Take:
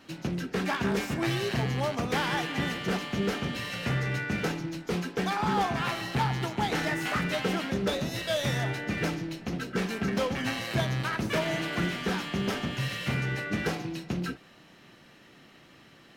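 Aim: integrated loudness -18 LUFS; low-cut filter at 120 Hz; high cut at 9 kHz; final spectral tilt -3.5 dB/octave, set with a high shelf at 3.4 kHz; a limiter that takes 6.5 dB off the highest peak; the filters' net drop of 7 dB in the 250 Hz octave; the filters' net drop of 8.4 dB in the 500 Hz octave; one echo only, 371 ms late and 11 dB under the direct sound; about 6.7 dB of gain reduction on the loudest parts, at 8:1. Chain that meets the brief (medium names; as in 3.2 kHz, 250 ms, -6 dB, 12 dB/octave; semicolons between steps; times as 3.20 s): high-pass 120 Hz; low-pass 9 kHz; peaking EQ 250 Hz -7.5 dB; peaking EQ 500 Hz -9 dB; treble shelf 3.4 kHz +4.5 dB; compression 8:1, threshold -33 dBFS; peak limiter -29 dBFS; delay 371 ms -11 dB; trim +19 dB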